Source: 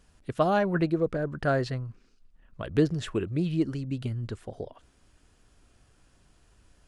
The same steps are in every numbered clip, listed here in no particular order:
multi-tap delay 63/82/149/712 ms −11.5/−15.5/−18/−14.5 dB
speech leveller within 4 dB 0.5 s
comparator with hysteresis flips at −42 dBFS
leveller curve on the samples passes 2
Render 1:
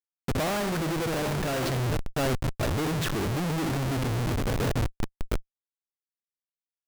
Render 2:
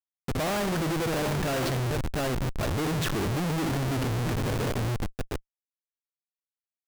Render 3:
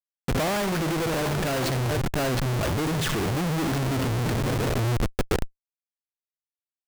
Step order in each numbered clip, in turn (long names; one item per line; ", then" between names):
multi-tap delay, then comparator with hysteresis, then leveller curve on the samples, then speech leveller
multi-tap delay, then speech leveller, then comparator with hysteresis, then leveller curve on the samples
leveller curve on the samples, then multi-tap delay, then comparator with hysteresis, then speech leveller